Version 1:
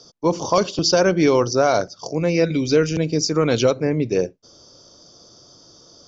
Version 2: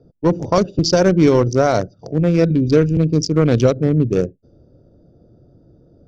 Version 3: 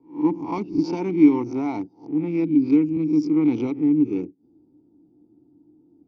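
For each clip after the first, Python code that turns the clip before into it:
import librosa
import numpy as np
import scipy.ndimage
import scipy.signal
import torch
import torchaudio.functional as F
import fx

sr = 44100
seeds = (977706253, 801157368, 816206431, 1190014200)

y1 = fx.wiener(x, sr, points=41)
y1 = fx.env_lowpass(y1, sr, base_hz=2800.0, full_db=-18.0)
y1 = fx.low_shelf(y1, sr, hz=210.0, db=11.5)
y1 = y1 * librosa.db_to_amplitude(1.0)
y2 = fx.spec_swells(y1, sr, rise_s=0.34)
y2 = fx.vowel_filter(y2, sr, vowel='u')
y2 = y2 * librosa.db_to_amplitude(3.0)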